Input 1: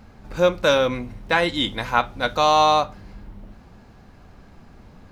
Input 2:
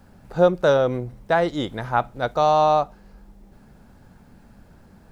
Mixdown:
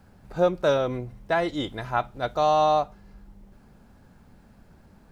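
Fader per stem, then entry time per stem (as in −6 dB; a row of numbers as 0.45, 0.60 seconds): −15.0, −4.5 decibels; 0.00, 0.00 seconds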